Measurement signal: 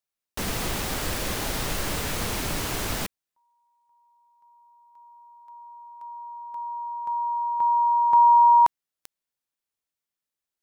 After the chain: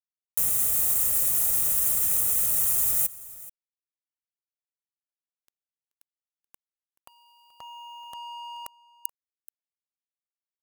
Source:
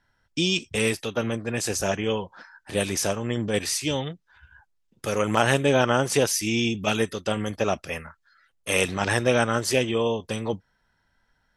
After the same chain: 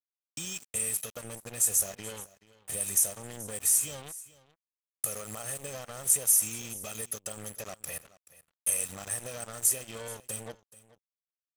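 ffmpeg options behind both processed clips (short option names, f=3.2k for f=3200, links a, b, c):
-filter_complex "[0:a]highpass=42,aecho=1:1:1.6:0.6,acompressor=threshold=-30dB:ratio=6:attack=5.5:release=98:knee=6:detection=rms,aexciter=amount=15.6:drive=6:freq=6.9k,acrusher=bits=4:mix=0:aa=0.5,asplit=2[a][b];[b]aecho=0:1:430:0.112[c];[a][c]amix=inputs=2:normalize=0,volume=-9dB"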